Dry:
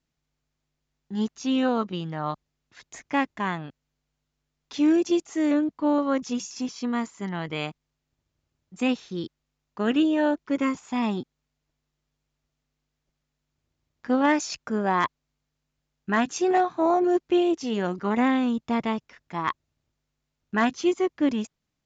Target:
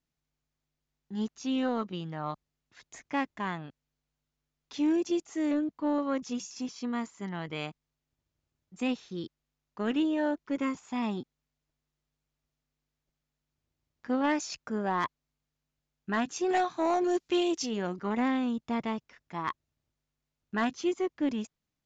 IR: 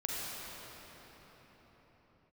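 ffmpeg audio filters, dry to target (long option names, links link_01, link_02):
-filter_complex "[0:a]asplit=3[link_01][link_02][link_03];[link_01]afade=type=out:start_time=16.48:duration=0.02[link_04];[link_02]equalizer=frequency=6600:width=0.35:gain=12.5,afade=type=in:start_time=16.48:duration=0.02,afade=type=out:start_time=17.65:duration=0.02[link_05];[link_03]afade=type=in:start_time=17.65:duration=0.02[link_06];[link_04][link_05][link_06]amix=inputs=3:normalize=0,asoftclip=type=tanh:threshold=-12.5dB,volume=-5.5dB"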